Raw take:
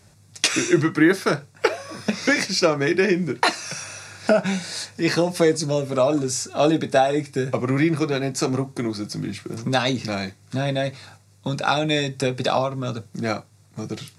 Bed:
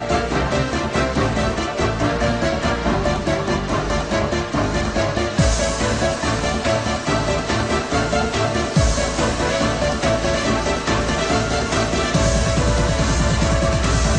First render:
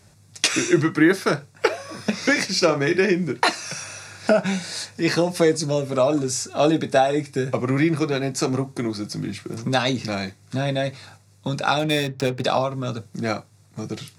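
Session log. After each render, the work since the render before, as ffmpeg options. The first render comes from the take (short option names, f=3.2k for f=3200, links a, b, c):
-filter_complex "[0:a]asettb=1/sr,asplit=3[a][b][c];[a]atrim=end=2.444[d];[b]atrim=start=2.44:end=3,asetpts=PTS-STARTPTS,afade=t=in:d=0.004:c=qsin,afade=t=out:st=0.556:d=0.004:c=qsin,asplit=2[e][f];[f]adelay=49,volume=-12dB[g];[e][g]amix=inputs=2:normalize=0,atrim=end_sample=24696[h];[c]atrim=start=2.996[i];[d][h]acrossfade=d=0.004:c1=hsin:c2=qsin[j];[j][i]acrossfade=d=0.004:c1=qsin:c2=hsin,asettb=1/sr,asplit=3[k][l][m];[k]atrim=end=11.794[n];[l]atrim=start=11.79:end=12.44,asetpts=PTS-STARTPTS,afade=t=in:d=0.004:c=qsin,afade=t=out:st=0.646:d=0.004:c=qsin,adynamicsmooth=sensitivity=6:basefreq=1.3k[o];[m]atrim=start=12.436[p];[n][o]acrossfade=d=0.004:c1=hsin:c2=qsin[q];[q][p]acrossfade=d=0.004:c1=qsin:c2=hsin"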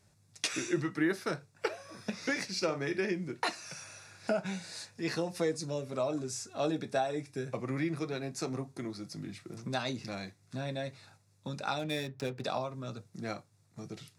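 -af "volume=-13.5dB"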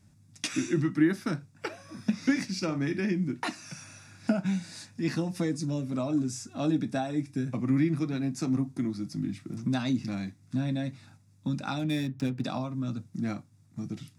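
-af "lowshelf=f=340:t=q:w=3:g=7,bandreject=f=4.2k:w=14"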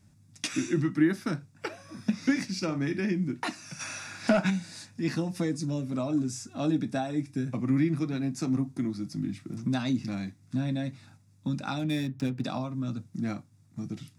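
-filter_complex "[0:a]asplit=3[a][b][c];[a]afade=t=out:st=3.79:d=0.02[d];[b]asplit=2[e][f];[f]highpass=f=720:p=1,volume=20dB,asoftclip=type=tanh:threshold=-12.5dB[g];[e][g]amix=inputs=2:normalize=0,lowpass=f=4.9k:p=1,volume=-6dB,afade=t=in:st=3.79:d=0.02,afade=t=out:st=4.49:d=0.02[h];[c]afade=t=in:st=4.49:d=0.02[i];[d][h][i]amix=inputs=3:normalize=0"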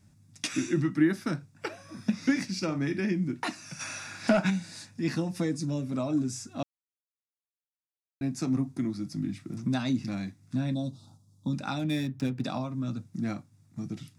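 -filter_complex "[0:a]asettb=1/sr,asplit=3[a][b][c];[a]atrim=end=10.744[d];[b]atrim=start=10.74:end=11.53,asetpts=PTS-STARTPTS,afade=t=in:d=0.004:c=qsin,afade=t=out:st=0.786:d=0.004:c=qsin,asuperstop=centerf=2000:order=8:qfactor=0.98[e];[c]atrim=start=11.526[f];[d][e]acrossfade=d=0.004:c1=hsin:c2=qsin[g];[g][f]acrossfade=d=0.004:c1=qsin:c2=hsin,asplit=3[h][i][j];[h]atrim=end=6.63,asetpts=PTS-STARTPTS,afade=t=out:st=6.626:d=0.004:c=hsin[k];[i]atrim=start=6.63:end=8.21,asetpts=PTS-STARTPTS,volume=0[l];[j]atrim=start=8.21,asetpts=PTS-STARTPTS,afade=t=in:d=0.004:c=hsin[m];[k][l][m]concat=n=3:v=0:a=1"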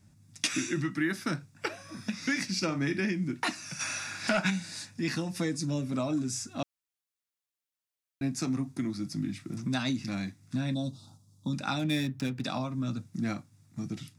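-filter_complex "[0:a]acrossover=split=1200[a][b];[a]alimiter=limit=-23dB:level=0:latency=1:release=236[c];[b]dynaudnorm=f=160:g=3:m=4dB[d];[c][d]amix=inputs=2:normalize=0"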